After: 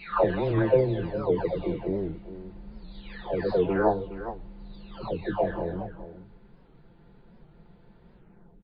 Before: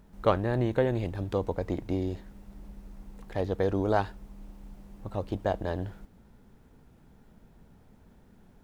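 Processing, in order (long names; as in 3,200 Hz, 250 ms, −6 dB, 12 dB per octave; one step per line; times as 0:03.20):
every frequency bin delayed by itself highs early, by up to 906 ms
linear-phase brick-wall low-pass 4,800 Hz
parametric band 460 Hz +3 dB 0.44 octaves
on a send: single-tap delay 415 ms −13 dB
on the sum: wow of a warped record 78 rpm, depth 160 cents
level +4.5 dB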